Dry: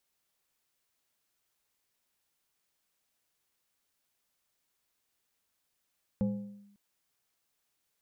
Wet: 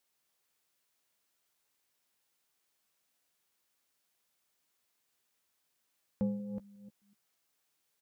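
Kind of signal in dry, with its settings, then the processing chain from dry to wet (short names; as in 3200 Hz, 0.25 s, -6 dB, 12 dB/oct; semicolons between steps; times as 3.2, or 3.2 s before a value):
FM tone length 0.55 s, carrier 202 Hz, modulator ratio 1.56, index 0.62, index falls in 0.48 s linear, decay 0.87 s, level -24 dB
reverse delay 0.246 s, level -8 dB; low shelf 89 Hz -10 dB; doubler 14 ms -12.5 dB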